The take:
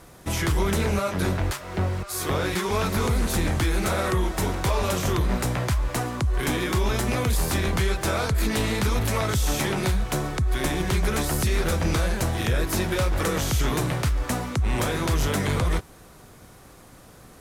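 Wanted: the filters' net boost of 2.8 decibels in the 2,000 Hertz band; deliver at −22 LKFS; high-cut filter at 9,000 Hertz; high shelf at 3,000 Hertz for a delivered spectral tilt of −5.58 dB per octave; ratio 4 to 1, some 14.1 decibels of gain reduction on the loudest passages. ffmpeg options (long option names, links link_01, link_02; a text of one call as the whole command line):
ffmpeg -i in.wav -af "lowpass=9000,equalizer=frequency=2000:width_type=o:gain=6,highshelf=frequency=3000:gain=-7,acompressor=threshold=-37dB:ratio=4,volume=16dB" out.wav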